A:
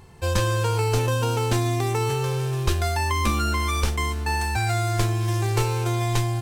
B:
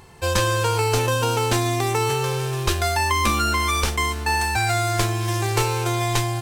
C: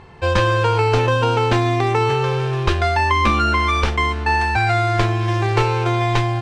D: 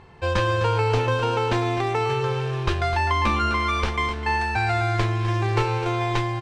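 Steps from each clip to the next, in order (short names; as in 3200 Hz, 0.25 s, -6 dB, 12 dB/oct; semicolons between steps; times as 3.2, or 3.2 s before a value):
low shelf 330 Hz -7.5 dB; gain +5.5 dB
LPF 3000 Hz 12 dB/oct; gain +4.5 dB
echo 0.254 s -11.5 dB; gain -5.5 dB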